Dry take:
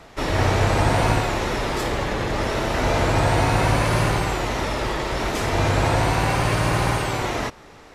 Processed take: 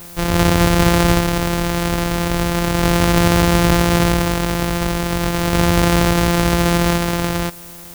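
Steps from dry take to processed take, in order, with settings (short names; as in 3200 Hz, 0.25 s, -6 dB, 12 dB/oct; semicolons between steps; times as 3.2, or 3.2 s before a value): sample sorter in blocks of 256 samples; added noise blue -43 dBFS; gain +5 dB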